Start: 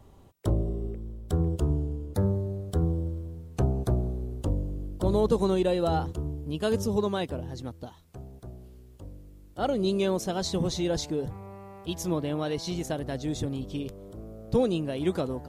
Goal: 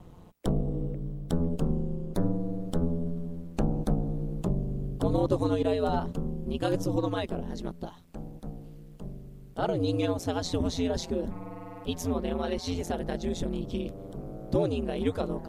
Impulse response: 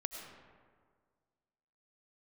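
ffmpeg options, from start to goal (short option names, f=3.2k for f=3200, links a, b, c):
-filter_complex "[0:a]aeval=exprs='val(0)*sin(2*PI*88*n/s)':c=same,asplit=2[a][b];[b]acompressor=threshold=-35dB:ratio=6,volume=3dB[c];[a][c]amix=inputs=2:normalize=0,bass=f=250:g=1,treble=f=4k:g=-4,volume=-2dB"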